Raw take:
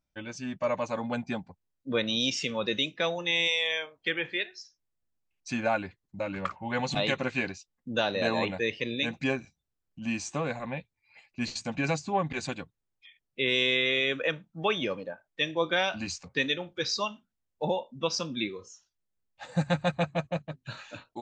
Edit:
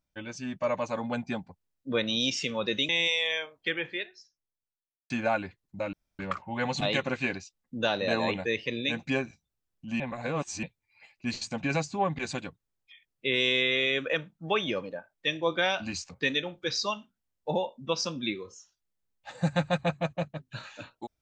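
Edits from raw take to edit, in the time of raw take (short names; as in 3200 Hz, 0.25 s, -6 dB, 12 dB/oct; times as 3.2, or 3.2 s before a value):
2.89–3.29 cut
3.99–5.5 studio fade out
6.33 insert room tone 0.26 s
10.14–10.77 reverse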